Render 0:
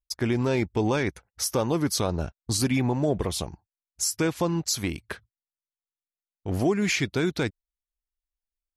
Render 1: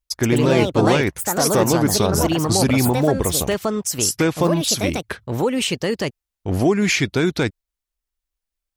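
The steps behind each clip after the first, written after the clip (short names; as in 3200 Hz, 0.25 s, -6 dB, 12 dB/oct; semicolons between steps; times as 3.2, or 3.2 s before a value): echoes that change speed 0.149 s, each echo +4 st, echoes 2; gain +6.5 dB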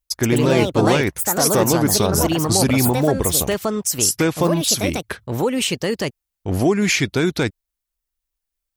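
high shelf 9100 Hz +6.5 dB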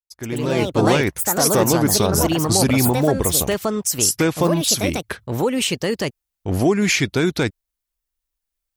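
opening faded in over 0.87 s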